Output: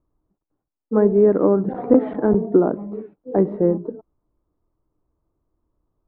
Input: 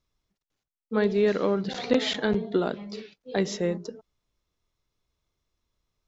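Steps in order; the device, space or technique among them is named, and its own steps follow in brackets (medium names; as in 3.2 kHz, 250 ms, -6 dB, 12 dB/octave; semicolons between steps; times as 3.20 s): under water (low-pass 1.1 kHz 24 dB/octave; peaking EQ 310 Hz +10 dB 0.31 oct); trim +7 dB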